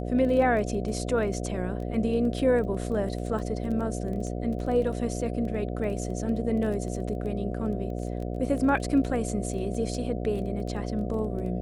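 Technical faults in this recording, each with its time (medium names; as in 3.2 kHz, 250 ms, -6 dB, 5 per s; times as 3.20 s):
buzz 60 Hz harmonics 12 -32 dBFS
crackle 11 per s -33 dBFS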